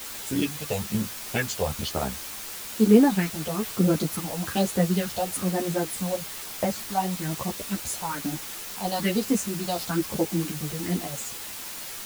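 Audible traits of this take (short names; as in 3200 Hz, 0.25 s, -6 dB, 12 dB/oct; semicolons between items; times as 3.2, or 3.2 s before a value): phasing stages 4, 1.1 Hz, lowest notch 260–4300 Hz; a quantiser's noise floor 6-bit, dither triangular; a shimmering, thickened sound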